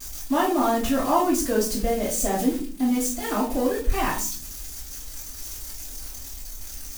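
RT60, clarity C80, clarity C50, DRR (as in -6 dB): 0.45 s, 12.0 dB, 6.0 dB, -10.5 dB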